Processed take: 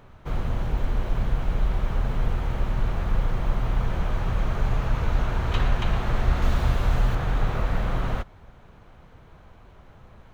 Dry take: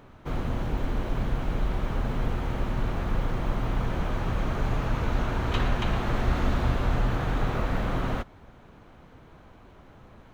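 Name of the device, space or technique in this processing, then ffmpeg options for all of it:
low shelf boost with a cut just above: -filter_complex "[0:a]lowshelf=f=86:g=5.5,equalizer=f=280:t=o:w=0.72:g=-6,asettb=1/sr,asplit=3[a][b][c];[a]atrim=end=6.424[d];[b]atrim=start=6.42:end=7.15,asetpts=PTS-STARTPTS,afade=t=in:d=0.004:c=qsin,afade=t=out:st=0.726:d=0.004:c=qsin,highshelf=f=4.5k:g=6.5[e];[c]atrim=start=7.146[f];[d][e]acrossfade=d=0.004:c1=hsin:c2=qsin[g];[g][f]acrossfade=d=0.004:c1=qsin:c2=hsin"

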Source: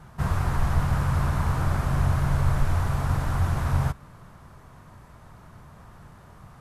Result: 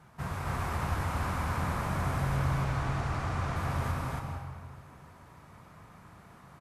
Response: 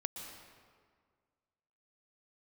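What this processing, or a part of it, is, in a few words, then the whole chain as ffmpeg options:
stadium PA: -filter_complex "[0:a]asettb=1/sr,asplit=3[a][b][c];[a]atrim=end=2.364[d];[b]atrim=start=2.36:end=3.56,asetpts=PTS-STARTPTS,afade=t=in:d=0.004:c=qsin,afade=t=out:st=1.196:d=0.004:c=qsin,lowpass=7k[e];[c]atrim=start=3.556[f];[d][e]acrossfade=d=0.004:c1=hsin:c2=qsin[g];[g][f]acrossfade=d=0.004:c1=qsin:c2=hsin,highpass=f=140:p=1,equalizer=f=2.3k:t=o:w=0.36:g=4,aecho=1:1:247.8|279.9:0.282|0.891[h];[1:a]atrim=start_sample=2205[i];[h][i]afir=irnorm=-1:irlink=0,volume=-5dB"

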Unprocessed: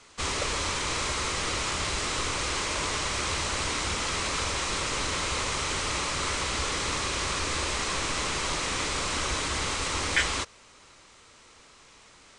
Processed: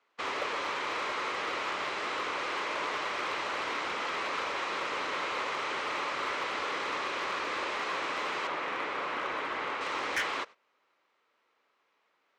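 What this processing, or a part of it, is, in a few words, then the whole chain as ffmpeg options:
walkie-talkie: -filter_complex "[0:a]asettb=1/sr,asplit=3[a][b][c];[a]atrim=end=8.474[d];[b]atrim=start=8.47:end=9.81,asetpts=PTS-STARTPTS,afade=t=in:d=0.004:c=qsin,afade=t=out:st=1.336:d=0.004:c=qsin,acrossover=split=3100[e][f];[f]acompressor=threshold=-42dB:ratio=4:attack=1:release=60[g];[e][g]amix=inputs=2:normalize=0[h];[c]atrim=start=9.806[i];[d][h]acrossfade=d=0.004:c1=hsin:c2=qsin[j];[j][i]acrossfade=d=0.004:c1=qsin:c2=hsin,highpass=400,lowpass=2.4k,asoftclip=type=hard:threshold=-25.5dB,agate=range=-16dB:threshold=-45dB:ratio=16:detection=peak"

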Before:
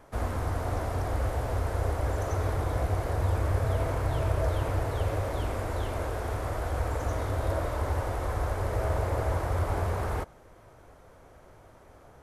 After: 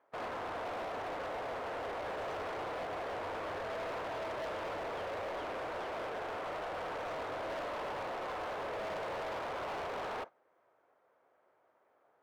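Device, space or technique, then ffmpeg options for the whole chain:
walkie-talkie: -af "highpass=450,lowpass=2.4k,asoftclip=type=hard:threshold=-38dB,agate=range=-15dB:threshold=-46dB:ratio=16:detection=peak,volume=1dB"

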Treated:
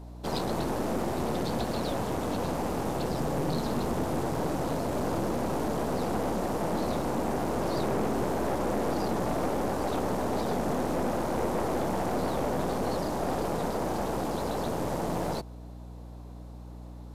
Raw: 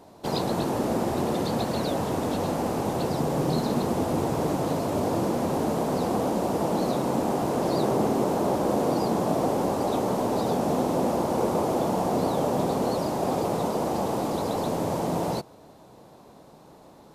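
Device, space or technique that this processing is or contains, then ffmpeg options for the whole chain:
valve amplifier with mains hum: -af "aeval=exprs='(tanh(15.8*val(0)+0.65)-tanh(0.65))/15.8':c=same,aeval=exprs='val(0)+0.00794*(sin(2*PI*60*n/s)+sin(2*PI*2*60*n/s)/2+sin(2*PI*3*60*n/s)/3+sin(2*PI*4*60*n/s)/4+sin(2*PI*5*60*n/s)/5)':c=same"

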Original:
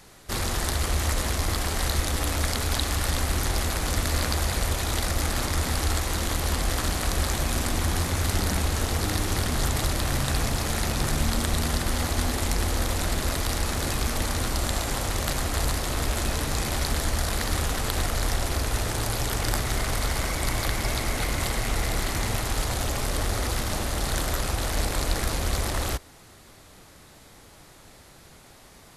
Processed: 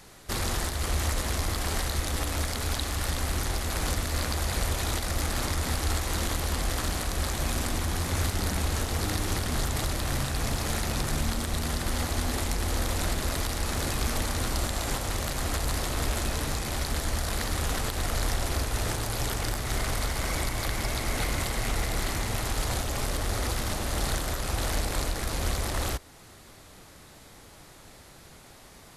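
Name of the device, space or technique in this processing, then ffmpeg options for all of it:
soft clipper into limiter: -af "asoftclip=type=tanh:threshold=-10dB,alimiter=limit=-17.5dB:level=0:latency=1:release=328"

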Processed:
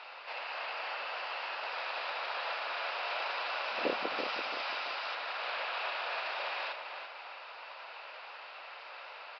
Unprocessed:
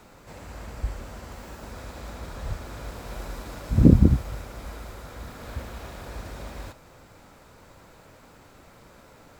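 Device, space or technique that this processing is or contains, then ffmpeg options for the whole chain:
musical greeting card: -filter_complex "[0:a]asettb=1/sr,asplit=3[a][b][c];[a]atrim=end=4.184[d];[b]atrim=start=4.18:end=5.15,asetpts=PTS-STARTPTS,afade=t=in:d=0.004:c=qsin,afade=t=out:st=0.966:d=0.004:c=qsin,aemphasis=mode=production:type=50fm[e];[c]atrim=start=5.146[f];[d][e]acrossfade=d=0.004:c1=hsin:c2=qsin[g];[g][f]acrossfade=d=0.004:c1=qsin:c2=hsin,aresample=11025,aresample=44100,highpass=f=670:w=0.5412,highpass=f=670:w=1.3066,equalizer=f=2.7k:t=o:w=0.32:g=11,asplit=2[h][i];[i]adelay=336,lowpass=f=3.8k:p=1,volume=-6.5dB,asplit=2[j][k];[k]adelay=336,lowpass=f=3.8k:p=1,volume=0.34,asplit=2[l][m];[m]adelay=336,lowpass=f=3.8k:p=1,volume=0.34,asplit=2[n][o];[o]adelay=336,lowpass=f=3.8k:p=1,volume=0.34[p];[h][j][l][n][p]amix=inputs=5:normalize=0,volume=6.5dB"

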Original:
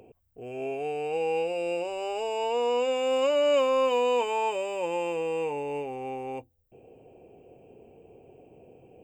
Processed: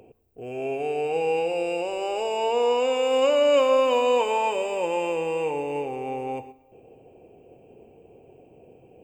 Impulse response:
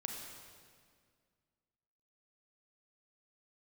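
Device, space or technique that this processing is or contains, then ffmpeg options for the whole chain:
keyed gated reverb: -filter_complex "[0:a]asplit=3[a][b][c];[1:a]atrim=start_sample=2205[d];[b][d]afir=irnorm=-1:irlink=0[e];[c]apad=whole_len=398390[f];[e][f]sidechaingate=range=-10dB:threshold=-50dB:ratio=16:detection=peak,volume=-3dB[g];[a][g]amix=inputs=2:normalize=0"

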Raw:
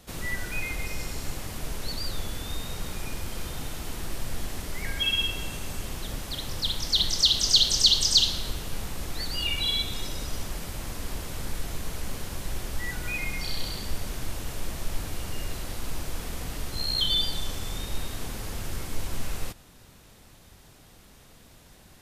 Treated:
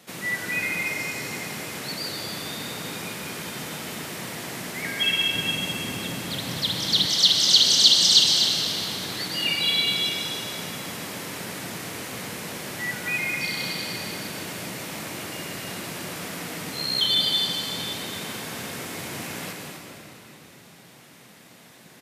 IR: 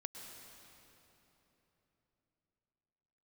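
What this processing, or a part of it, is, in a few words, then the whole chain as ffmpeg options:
stadium PA: -filter_complex "[0:a]highpass=f=140:w=0.5412,highpass=f=140:w=1.3066,equalizer=f=2.1k:t=o:w=0.82:g=5,aecho=1:1:160.3|250.7:0.282|0.447[a];[1:a]atrim=start_sample=2205[b];[a][b]afir=irnorm=-1:irlink=0,asettb=1/sr,asplit=3[c][d][e];[c]atrim=end=5.344[f];[d]atrim=start=5.34:end=7.06,asetpts=PTS-STARTPTS,afade=t=in:d=0.004:c=qsin,afade=t=out:st=1.716:d=0.004:c=qsin,lowshelf=f=190:g=10[g];[e]atrim=start=7.056[h];[f][g]acrossfade=d=0.004:c1=hsin:c2=qsin[i];[i][h]acrossfade=d=0.004:c1=qsin:c2=hsin,volume=6dB"

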